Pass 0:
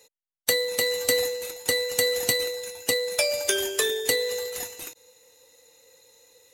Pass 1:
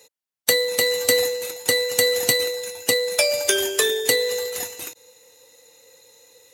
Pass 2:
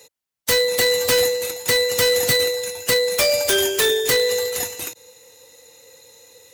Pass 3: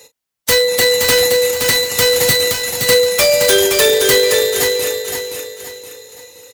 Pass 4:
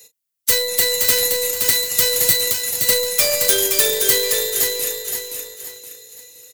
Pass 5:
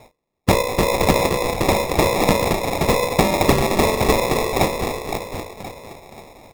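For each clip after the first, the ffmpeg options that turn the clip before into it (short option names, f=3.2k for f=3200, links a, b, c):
-af "highpass=75,volume=4.5dB"
-filter_complex "[0:a]acrossover=split=150[a][b];[a]acontrast=39[c];[b]aeval=exprs='0.168*(abs(mod(val(0)/0.168+3,4)-2)-1)':c=same[d];[c][d]amix=inputs=2:normalize=0,volume=4dB"
-filter_complex "[0:a]asplit=2[a][b];[b]adelay=36,volume=-12.5dB[c];[a][c]amix=inputs=2:normalize=0,asplit=2[d][e];[e]aecho=0:1:521|1042|1563|2084:0.562|0.202|0.0729|0.0262[f];[d][f]amix=inputs=2:normalize=0,volume=5dB"
-filter_complex "[0:a]acrossover=split=610|1000[a][b][c];[b]acrusher=bits=4:dc=4:mix=0:aa=0.000001[d];[c]crystalizer=i=2:c=0[e];[a][d][e]amix=inputs=3:normalize=0,volume=-9.5dB"
-af "bandreject=f=50:t=h:w=6,bandreject=f=100:t=h:w=6,bandreject=f=150:t=h:w=6,bandreject=f=200:t=h:w=6,bandreject=f=250:t=h:w=6,bandreject=f=300:t=h:w=6,bandreject=f=350:t=h:w=6,bandreject=f=400:t=h:w=6,bandreject=f=450:t=h:w=6,bandreject=f=500:t=h:w=6,acrusher=samples=29:mix=1:aa=0.000001"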